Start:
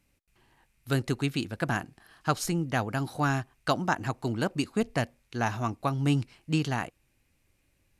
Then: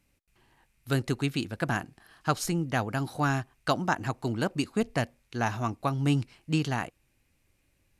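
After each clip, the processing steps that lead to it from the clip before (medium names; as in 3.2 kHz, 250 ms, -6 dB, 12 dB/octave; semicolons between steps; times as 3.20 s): no audible change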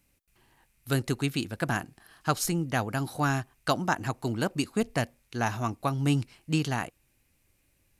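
treble shelf 9.1 kHz +9.5 dB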